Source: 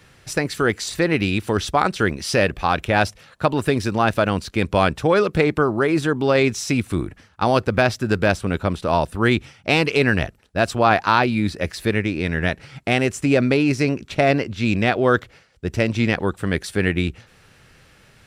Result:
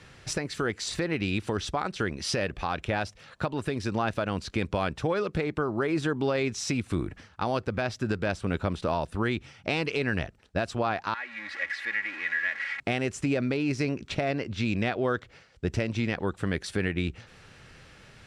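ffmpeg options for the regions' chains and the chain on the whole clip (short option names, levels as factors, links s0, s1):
-filter_complex "[0:a]asettb=1/sr,asplit=3[s0][s1][s2];[s0]atrim=end=11.144[s3];[s1]atrim=start=11.14:end=12.8,asetpts=PTS-STARTPTS,afade=t=in:d=0.004:c=qsin,afade=t=out:st=1.656:d=0.004:c=qsin,aeval=exprs='val(0)+0.5*0.106*sgn(val(0))':c=same,bandpass=f=1900:t=q:w=5.8,aecho=1:1:3.6:0.67,atrim=end_sample=73206[s4];[s2]atrim=start=12.796[s5];[s3][s4]acrossfade=d=0.004:c1=hsin:c2=qsin[s6];[s6][s5]acrossfade=d=0.004:c1=qsin:c2=hsin,acompressor=threshold=0.0501:ratio=2,lowpass=7800,alimiter=limit=0.15:level=0:latency=1:release=429"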